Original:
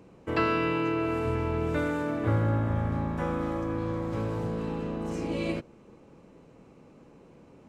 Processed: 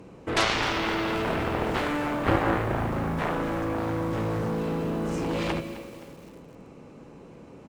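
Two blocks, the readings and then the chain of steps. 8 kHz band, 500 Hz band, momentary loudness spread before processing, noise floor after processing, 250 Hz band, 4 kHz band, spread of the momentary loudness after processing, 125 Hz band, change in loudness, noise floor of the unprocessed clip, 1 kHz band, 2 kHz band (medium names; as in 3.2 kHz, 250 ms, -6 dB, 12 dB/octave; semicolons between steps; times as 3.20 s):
no reading, +2.0 dB, 7 LU, -48 dBFS, +1.5 dB, +12.5 dB, 13 LU, -1.5 dB, +2.0 dB, -55 dBFS, +5.0 dB, +6.0 dB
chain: on a send: feedback delay 153 ms, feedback 54%, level -15 dB; on the sum: Chebyshev shaper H 7 -8 dB, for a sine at -12.5 dBFS; bit-crushed delay 261 ms, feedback 55%, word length 7-bit, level -14 dB; trim +1.5 dB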